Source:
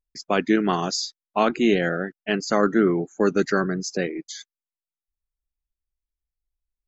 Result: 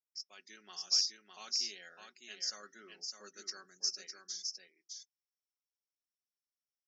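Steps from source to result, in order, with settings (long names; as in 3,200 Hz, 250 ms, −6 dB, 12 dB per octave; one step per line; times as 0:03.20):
resonant band-pass 5,500 Hz, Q 16
comb filter 5.4 ms, depth 46%
single-tap delay 608 ms −5 dB
automatic gain control gain up to 7 dB
on a send at −16.5 dB: convolution reverb RT60 0.15 s, pre-delay 3 ms
0:03.10–0:03.85: on the sum: multiband upward and downward expander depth 40%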